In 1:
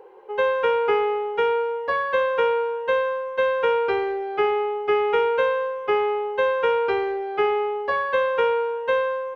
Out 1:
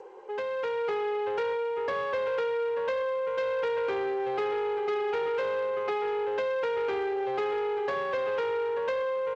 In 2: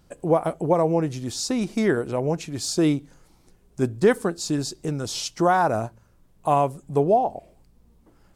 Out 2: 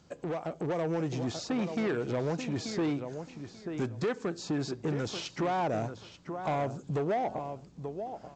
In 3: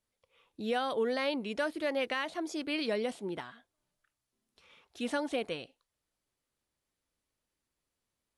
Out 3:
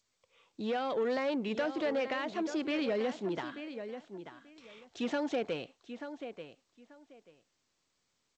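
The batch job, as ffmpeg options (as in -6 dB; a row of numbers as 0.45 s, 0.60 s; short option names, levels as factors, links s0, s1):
-filter_complex "[0:a]acrossover=split=660|2700[s0][s1][s2];[s0]acompressor=threshold=0.0282:ratio=4[s3];[s1]acompressor=threshold=0.0126:ratio=4[s4];[s2]acompressor=threshold=0.00251:ratio=4[s5];[s3][s4][s5]amix=inputs=3:normalize=0,asplit=2[s6][s7];[s7]adelay=886,lowpass=f=3900:p=1,volume=0.266,asplit=2[s8][s9];[s9]adelay=886,lowpass=f=3900:p=1,volume=0.19[s10];[s8][s10]amix=inputs=2:normalize=0[s11];[s6][s11]amix=inputs=2:normalize=0,asoftclip=type=tanh:threshold=0.0355,highpass=96,volume=25.1,asoftclip=hard,volume=0.0398,dynaudnorm=f=260:g=5:m=1.58" -ar 16000 -c:a g722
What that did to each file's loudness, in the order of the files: -7.0 LU, -10.0 LU, -1.0 LU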